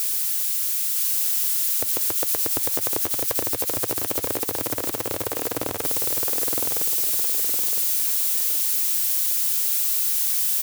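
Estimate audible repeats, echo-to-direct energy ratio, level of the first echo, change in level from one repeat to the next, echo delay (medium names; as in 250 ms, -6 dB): 4, -3.0 dB, -3.5 dB, -8.0 dB, 963 ms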